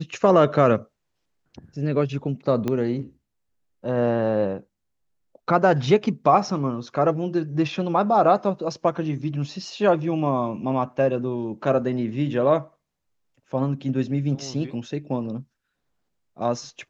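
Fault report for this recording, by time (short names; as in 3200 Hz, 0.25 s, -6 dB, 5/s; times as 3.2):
2.68 pop -13 dBFS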